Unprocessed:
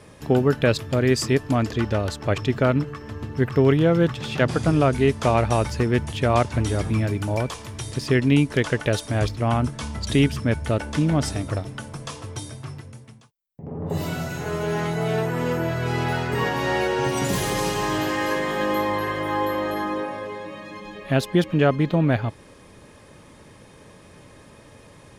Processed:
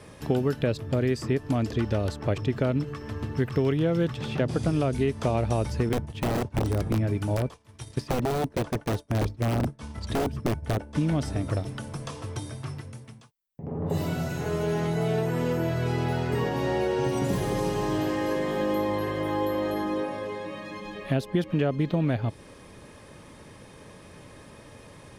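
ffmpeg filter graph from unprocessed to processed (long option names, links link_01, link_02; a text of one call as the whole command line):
ffmpeg -i in.wav -filter_complex "[0:a]asettb=1/sr,asplit=3[link_01][link_02][link_03];[link_01]atrim=end=5.894[link_04];[link_02]atrim=start=5.89:end=10.96,asetpts=PTS-STARTPTS,afade=type=in:duration=0.004:curve=qsin,afade=type=out:start_time=5.066:duration=0.004:curve=qsin,aeval=exprs='(mod(5.62*val(0)+1,2)-1)/5.62':channel_layout=same,agate=range=-33dB:threshold=-25dB:ratio=3:release=100:detection=peak[link_05];[link_03]atrim=start=10.956[link_06];[link_04][link_05]acrossfade=duration=0.004:curve1=hsin:curve2=qsin[link_07];[link_07][link_06]acrossfade=duration=0.004:curve1=qsin:curve2=hsin,bandreject=frequency=6900:width=21,acrossover=split=750|2400[link_08][link_09][link_10];[link_08]acompressor=threshold=-22dB:ratio=4[link_11];[link_09]acompressor=threshold=-42dB:ratio=4[link_12];[link_10]acompressor=threshold=-44dB:ratio=4[link_13];[link_11][link_12][link_13]amix=inputs=3:normalize=0" out.wav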